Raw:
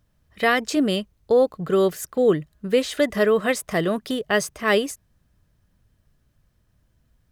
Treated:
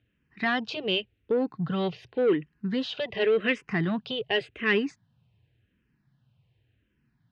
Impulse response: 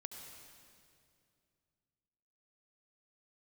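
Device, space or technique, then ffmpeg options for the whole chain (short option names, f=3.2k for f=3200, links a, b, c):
barber-pole phaser into a guitar amplifier: -filter_complex "[0:a]asplit=2[a][b];[b]afreqshift=-0.89[c];[a][c]amix=inputs=2:normalize=1,asoftclip=type=tanh:threshold=-17dB,highpass=110,equalizer=f=120:t=q:w=4:g=9,equalizer=f=600:t=q:w=4:g=-9,equalizer=f=1.2k:t=q:w=4:g=-8,equalizer=f=2.7k:t=q:w=4:g=7,lowpass=f=3.8k:w=0.5412,lowpass=f=3.8k:w=1.3066,volume=1dB"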